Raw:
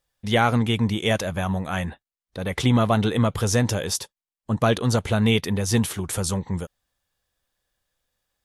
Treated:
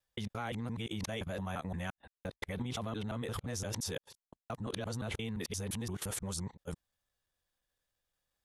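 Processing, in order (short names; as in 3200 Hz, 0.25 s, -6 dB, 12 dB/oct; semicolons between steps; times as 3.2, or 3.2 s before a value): local time reversal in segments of 0.173 s; level quantiser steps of 16 dB; gain -6 dB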